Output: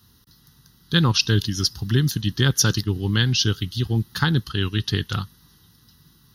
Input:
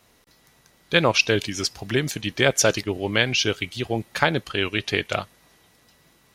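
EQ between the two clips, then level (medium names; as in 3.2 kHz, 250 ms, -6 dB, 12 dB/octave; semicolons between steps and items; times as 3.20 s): high-pass 54 Hz; tone controls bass +13 dB, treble +11 dB; static phaser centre 2.3 kHz, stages 6; -1.5 dB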